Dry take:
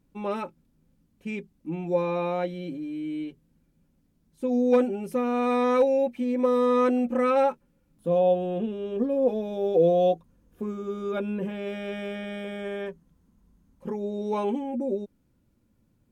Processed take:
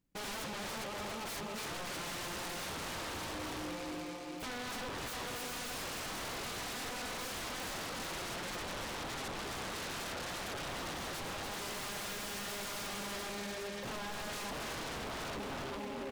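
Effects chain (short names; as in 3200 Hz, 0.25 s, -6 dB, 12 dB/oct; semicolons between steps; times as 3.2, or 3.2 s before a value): gate -57 dBFS, range -21 dB; feedback echo 0.403 s, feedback 52%, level -10 dB; on a send at -21.5 dB: reverb RT60 0.80 s, pre-delay 6 ms; on the sum: compressor 5:1, threshold -33 dBFS, peak gain reduction 15.5 dB; notch 1500 Hz, Q 5.7; in parallel at -9 dB: soft clip -39.5 dBFS, distortion -8 dB; on the sum: high shelf 2500 Hz +11 dB; thinning echo 0.288 s, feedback 59%, high-pass 490 Hz, level -4 dB; wavefolder -40 dBFS; noise-modulated delay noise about 1600 Hz, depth 0.087 ms; gain +4 dB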